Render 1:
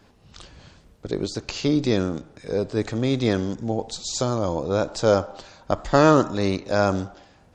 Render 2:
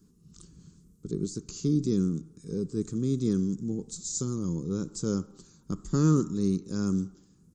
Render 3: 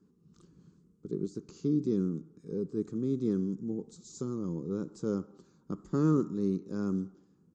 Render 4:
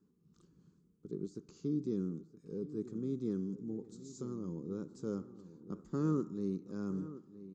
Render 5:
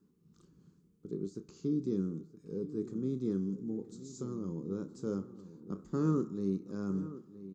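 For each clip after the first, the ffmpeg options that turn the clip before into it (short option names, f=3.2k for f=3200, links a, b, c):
-af "firequalizer=gain_entry='entry(110,0);entry(170,13);entry(240,4);entry(410,1);entry(620,-27);entry(1200,-7);entry(1800,-18);entry(2600,-16);entry(6800,8)':delay=0.05:min_phase=1,volume=-8.5dB"
-af "bandpass=f=560:t=q:w=0.53:csg=0"
-filter_complex "[0:a]asplit=2[a][b];[b]adelay=970,lowpass=f=2.8k:p=1,volume=-14.5dB,asplit=2[c][d];[d]adelay=970,lowpass=f=2.8k:p=1,volume=0.51,asplit=2[e][f];[f]adelay=970,lowpass=f=2.8k:p=1,volume=0.51,asplit=2[g][h];[h]adelay=970,lowpass=f=2.8k:p=1,volume=0.51,asplit=2[i][j];[j]adelay=970,lowpass=f=2.8k:p=1,volume=0.51[k];[a][c][e][g][i][k]amix=inputs=6:normalize=0,volume=-6.5dB"
-filter_complex "[0:a]asplit=2[a][b];[b]adelay=31,volume=-11.5dB[c];[a][c]amix=inputs=2:normalize=0,volume=2.5dB"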